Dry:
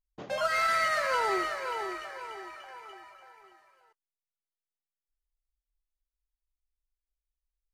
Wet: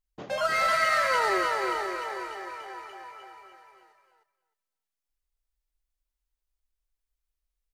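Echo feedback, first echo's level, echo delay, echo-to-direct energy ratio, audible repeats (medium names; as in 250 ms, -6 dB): 15%, -4.0 dB, 307 ms, -4.0 dB, 2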